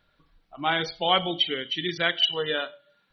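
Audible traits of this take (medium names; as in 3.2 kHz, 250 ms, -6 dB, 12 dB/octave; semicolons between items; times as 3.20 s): noise floor -69 dBFS; spectral tilt -0.5 dB/octave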